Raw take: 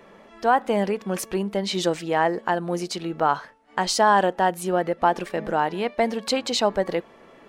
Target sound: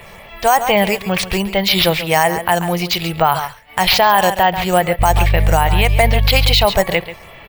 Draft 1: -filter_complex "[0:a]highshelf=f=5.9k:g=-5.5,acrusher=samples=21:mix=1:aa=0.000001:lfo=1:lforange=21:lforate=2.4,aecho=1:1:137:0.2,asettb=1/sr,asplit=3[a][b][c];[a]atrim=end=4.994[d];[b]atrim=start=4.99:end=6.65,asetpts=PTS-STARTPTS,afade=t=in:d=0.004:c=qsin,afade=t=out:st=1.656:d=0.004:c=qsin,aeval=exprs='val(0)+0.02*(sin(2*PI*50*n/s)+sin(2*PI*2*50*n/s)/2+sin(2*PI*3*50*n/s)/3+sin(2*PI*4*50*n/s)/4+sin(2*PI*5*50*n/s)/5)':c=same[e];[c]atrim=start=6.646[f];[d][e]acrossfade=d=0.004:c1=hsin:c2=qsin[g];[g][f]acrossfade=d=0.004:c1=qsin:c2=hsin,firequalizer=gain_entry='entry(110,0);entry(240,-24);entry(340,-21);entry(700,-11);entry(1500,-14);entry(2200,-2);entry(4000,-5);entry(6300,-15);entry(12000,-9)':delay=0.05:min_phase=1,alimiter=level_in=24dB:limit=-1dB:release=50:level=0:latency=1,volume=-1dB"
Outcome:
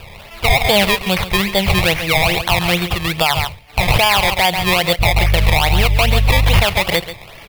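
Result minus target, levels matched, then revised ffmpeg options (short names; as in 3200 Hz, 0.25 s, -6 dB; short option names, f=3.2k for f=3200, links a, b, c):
decimation with a swept rate: distortion +16 dB
-filter_complex "[0:a]highshelf=f=5.9k:g=-5.5,acrusher=samples=4:mix=1:aa=0.000001:lfo=1:lforange=4:lforate=2.4,aecho=1:1:137:0.2,asettb=1/sr,asplit=3[a][b][c];[a]atrim=end=4.994[d];[b]atrim=start=4.99:end=6.65,asetpts=PTS-STARTPTS,afade=t=in:d=0.004:c=qsin,afade=t=out:st=1.656:d=0.004:c=qsin,aeval=exprs='val(0)+0.02*(sin(2*PI*50*n/s)+sin(2*PI*2*50*n/s)/2+sin(2*PI*3*50*n/s)/3+sin(2*PI*4*50*n/s)/4+sin(2*PI*5*50*n/s)/5)':c=same[e];[c]atrim=start=6.646[f];[d][e]acrossfade=d=0.004:c1=hsin:c2=qsin[g];[g][f]acrossfade=d=0.004:c1=qsin:c2=hsin,firequalizer=gain_entry='entry(110,0);entry(240,-24);entry(340,-21);entry(700,-11);entry(1500,-14);entry(2200,-2);entry(4000,-5);entry(6300,-15);entry(12000,-9)':delay=0.05:min_phase=1,alimiter=level_in=24dB:limit=-1dB:release=50:level=0:latency=1,volume=-1dB"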